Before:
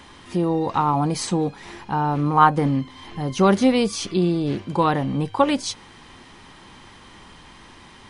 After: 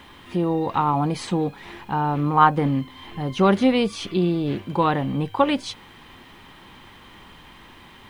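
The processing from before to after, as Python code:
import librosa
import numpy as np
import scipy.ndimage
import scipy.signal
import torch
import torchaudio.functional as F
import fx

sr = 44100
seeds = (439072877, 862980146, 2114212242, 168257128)

y = fx.high_shelf_res(x, sr, hz=4300.0, db=-7.0, q=1.5)
y = fx.quant_dither(y, sr, seeds[0], bits=10, dither='none')
y = y * librosa.db_to_amplitude(-1.0)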